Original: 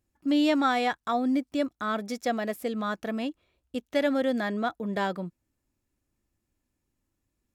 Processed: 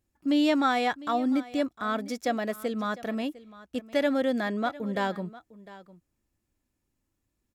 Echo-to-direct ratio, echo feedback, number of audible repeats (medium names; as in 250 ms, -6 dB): -18.5 dB, no regular repeats, 1